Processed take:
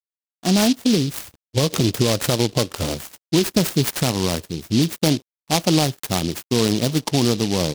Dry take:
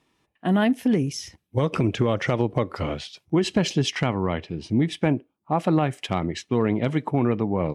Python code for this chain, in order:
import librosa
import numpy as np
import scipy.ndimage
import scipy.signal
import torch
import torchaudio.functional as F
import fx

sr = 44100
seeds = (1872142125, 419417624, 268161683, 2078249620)

y = np.sign(x) * np.maximum(np.abs(x) - 10.0 ** (-50.5 / 20.0), 0.0)
y = fx.noise_mod_delay(y, sr, seeds[0], noise_hz=4000.0, depth_ms=0.16)
y = y * 10.0 ** (3.5 / 20.0)